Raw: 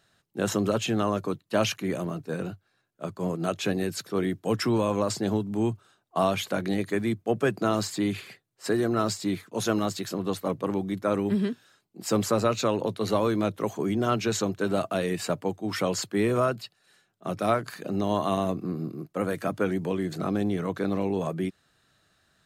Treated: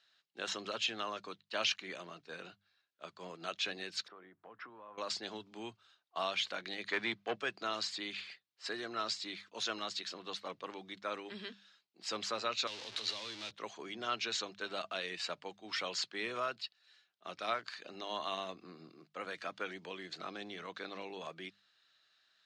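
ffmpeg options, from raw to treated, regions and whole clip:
-filter_complex "[0:a]asettb=1/sr,asplit=3[a][b][c];[a]atrim=end=4.084[d];[b]atrim=start=4.08:end=4.98,asetpts=PTS-STARTPTS,afade=t=in:d=0.004:c=qsin,afade=t=out:st=0.896:d=0.004:c=qsin,lowpass=f=1.2k:t=q:w=1.6,acompressor=threshold=-36dB:ratio=5:attack=3.2:release=140:knee=1:detection=peak[e];[c]atrim=start=4.976[f];[d][e]acrossfade=d=0.004:c1=hsin:c2=qsin[g];[g][f]acrossfade=d=0.004:c1=qsin:c2=hsin,asettb=1/sr,asplit=3[h][i][j];[h]atrim=end=6.864[k];[i]atrim=start=6.86:end=7.36,asetpts=PTS-STARTPTS,afade=t=in:d=0.004:c=qsin,afade=t=out:st=0.496:d=0.004:c=qsin,highpass=48,lowshelf=f=190:g=11.5,asplit=2[l][m];[m]highpass=f=720:p=1,volume=16dB,asoftclip=type=tanh:threshold=-9.5dB[n];[l][n]amix=inputs=2:normalize=0,lowpass=f=2.4k:p=1,volume=-6dB[o];[j]atrim=start=7.356[p];[k][o]acrossfade=d=0.004:c1=hsin:c2=qsin[q];[q][p]acrossfade=d=0.004:c1=qsin:c2=hsin,asettb=1/sr,asplit=3[r][s][t];[r]atrim=end=12.674[u];[s]atrim=start=12.67:end=13.51,asetpts=PTS-STARTPTS,afade=t=in:d=0.004:c=qsin,afade=t=out:st=0.836:d=0.004:c=qsin,aeval=exprs='val(0)+0.5*0.0447*sgn(val(0))':c=same,acrossover=split=220|3000[v][w][x];[w]acompressor=threshold=-34dB:ratio=6:attack=3.2:release=140:knee=2.83:detection=peak[y];[v][y][x]amix=inputs=3:normalize=0,equalizer=f=170:w=2.5:g=-11[z];[t]atrim=start=13.506[aa];[u][z]acrossfade=d=0.004:c1=hsin:c2=qsin[ab];[ab][aa]acrossfade=d=0.004:c1=qsin:c2=hsin,lowpass=f=4.4k:w=0.5412,lowpass=f=4.4k:w=1.3066,aderivative,bandreject=f=50:t=h:w=6,bandreject=f=100:t=h:w=6,bandreject=f=150:t=h:w=6,bandreject=f=200:t=h:w=6,volume=6.5dB"

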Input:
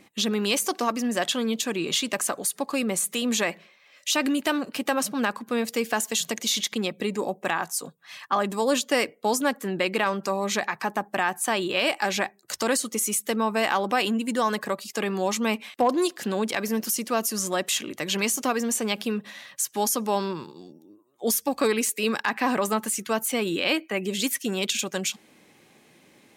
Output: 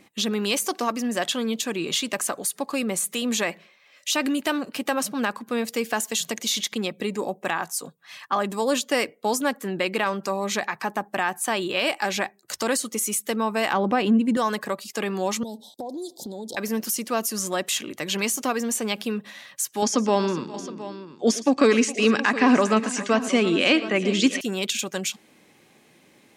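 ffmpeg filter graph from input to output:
-filter_complex "[0:a]asettb=1/sr,asplit=3[a][b][c];[a]atrim=end=13.734[d];[b]atrim=start=13.73:end=14.37,asetpts=PTS-STARTPTS,afade=t=in:d=0.004:c=qsin,afade=t=out:st=0.636:d=0.004:c=qsin,lowpass=f=2.1k:p=1,lowshelf=f=290:g=12[e];[c]atrim=start=14.366[f];[d][e]acrossfade=d=0.004:c1=hsin:c2=qsin[g];[g][f]acrossfade=d=0.004:c1=qsin:c2=hsin,asettb=1/sr,asplit=3[h][i][j];[h]atrim=end=15.434[k];[i]atrim=start=15.43:end=16.57,asetpts=PTS-STARTPTS,afade=t=in:d=0.004:c=qsin,afade=t=out:st=1.136:d=0.004:c=qsin,asuperstop=centerf=1800:order=20:qfactor=0.72,acompressor=threshold=-30dB:ratio=12:attack=3.2:release=140:knee=1:detection=peak[l];[j]atrim=start=16.566[m];[k][l]acrossfade=d=0.004:c1=hsin:c2=qsin[n];[n][m]acrossfade=d=0.004:c1=qsin:c2=hsin,asettb=1/sr,asplit=3[o][p][q];[o]atrim=end=19.824[r];[p]atrim=start=19.82:end=24.41,asetpts=PTS-STARTPTS,afade=t=in:d=0.004:c=qsin,afade=t=out:st=4.586:d=0.004:c=qsin,acontrast=29,highpass=110,equalizer=f=260:t=q:w=4:g=5,equalizer=f=870:t=q:w=4:g=-5,equalizer=f=4k:t=q:w=4:g=-4,lowpass=f=6.5k:w=0.5412,lowpass=f=6.5k:w=1.3066,aecho=1:1:115|413|718:0.141|0.133|0.188,atrim=end_sample=202419[s];[q]atrim=start=24.406[t];[r][s]acrossfade=d=0.004:c1=hsin:c2=qsin[u];[u][t]acrossfade=d=0.004:c1=qsin:c2=hsin"

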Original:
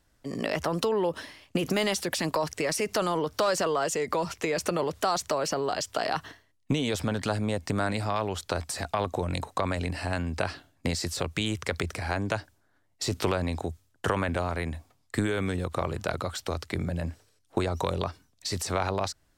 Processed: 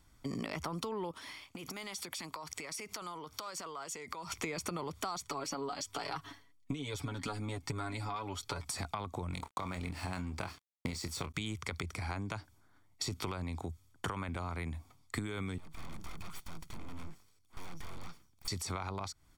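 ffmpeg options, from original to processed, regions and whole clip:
-filter_complex "[0:a]asettb=1/sr,asplit=3[a][b][c];[a]atrim=end=1.114[d];[b]atrim=start=1.11:end=4.32,asetpts=PTS-STARTPTS,afade=t=in:d=0.004:c=qsin,afade=t=out:st=3.206:d=0.004:c=qsin,acompressor=threshold=-38dB:ratio=10:attack=3.2:release=140:knee=1:detection=peak,lowshelf=f=360:g=-9.5[e];[c]atrim=start=4.316[f];[d][e]acrossfade=d=0.004:c1=hsin:c2=qsin[g];[g][f]acrossfade=d=0.004:c1=qsin:c2=hsin,asettb=1/sr,asplit=3[h][i][j];[h]atrim=end=5.244[k];[i]atrim=start=5.24:end=8.66,asetpts=PTS-STARTPTS,afade=t=in:d=0.004:c=qsin,afade=t=out:st=3.416:d=0.004:c=qsin,aecho=1:1:7.1:0.57,atrim=end_sample=150822,flanger=delay=1.9:depth=2.4:regen=-29:speed=1.2:shape=triangular[l];[j]atrim=start=8.656[m];[k][l]acrossfade=d=0.004:c1=hsin:c2=qsin[n];[n][m]acrossfade=d=0.004:c1=qsin:c2=hsin,asettb=1/sr,asplit=3[o][p][q];[o]atrim=end=9.314[r];[p]atrim=start=9.31:end=11.34,asetpts=PTS-STARTPTS,afade=t=in:d=0.004:c=qsin,afade=t=out:st=2.026:d=0.004:c=qsin,asplit=2[s][t];[t]adelay=27,volume=-9dB[u];[s][u]amix=inputs=2:normalize=0,atrim=end_sample=89523,aeval=exprs='sgn(val(0))*max(abs(val(0))-0.00708,0)':c=same[v];[q]atrim=start=11.336[w];[r][v]acrossfade=d=0.004:c1=hsin:c2=qsin[x];[x][w]acrossfade=d=0.004:c1=qsin:c2=hsin,asettb=1/sr,asplit=3[y][z][aa];[y]atrim=end=15.584[ab];[z]atrim=start=15.58:end=18.48,asetpts=PTS-STARTPTS,afade=t=in:d=0.004:c=qsin,afade=t=out:st=2.896:d=0.004:c=qsin,aeval=exprs='abs(val(0))':c=same,aeval=exprs='(tanh(31.6*val(0)+0.7)-tanh(0.7))/31.6':c=same[ac];[aa]atrim=start=18.476[ad];[ab][ac]acrossfade=d=0.004:c1=hsin:c2=qsin[ae];[ae][ad]acrossfade=d=0.004:c1=qsin:c2=hsin,aecho=1:1:0.9:0.5,acompressor=threshold=-37dB:ratio=6,volume=1dB"

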